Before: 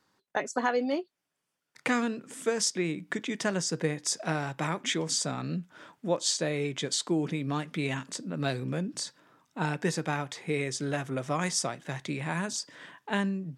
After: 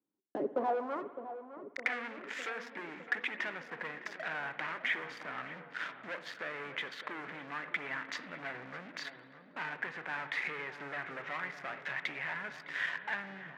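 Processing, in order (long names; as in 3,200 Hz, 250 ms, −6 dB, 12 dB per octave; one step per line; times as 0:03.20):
elliptic low-pass filter 7,200 Hz
treble cut that deepens with the level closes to 1,300 Hz, closed at −29.5 dBFS
leveller curve on the samples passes 5
in parallel at +1 dB: brickwall limiter −21.5 dBFS, peak gain reduction 7 dB
on the sum: downward compressor 4 to 1, threshold −20 dBFS, peak gain reduction 6 dB
band-pass filter sweep 300 Hz → 1,900 Hz, 0:00.35–0:01.18
feedback echo with a low-pass in the loop 609 ms, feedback 73%, low-pass 1,200 Hz, level −10.5 dB
convolution reverb RT60 1.5 s, pre-delay 56 ms, DRR 12.5 dB
level −5.5 dB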